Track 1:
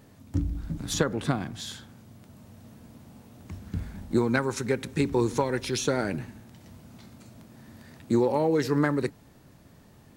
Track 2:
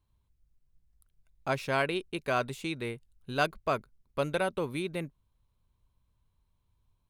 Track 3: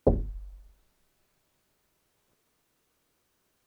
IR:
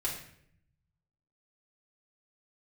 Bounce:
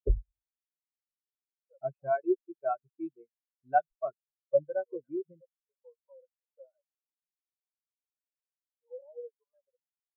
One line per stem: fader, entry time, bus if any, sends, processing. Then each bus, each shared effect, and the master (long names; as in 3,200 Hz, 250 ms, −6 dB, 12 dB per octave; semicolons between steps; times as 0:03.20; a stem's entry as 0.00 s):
−3.5 dB, 0.70 s, no send, elliptic high-pass filter 510 Hz, stop band 40 dB; spectral tilt −3.5 dB per octave; brickwall limiter −24 dBFS, peak gain reduction 10 dB
+0.5 dB, 0.35 s, send −14.5 dB, no processing
−6.5 dB, 0.00 s, send −8.5 dB, no processing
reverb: on, RT60 0.65 s, pre-delay 3 ms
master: reverb reduction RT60 0.66 s; every bin expanded away from the loudest bin 4 to 1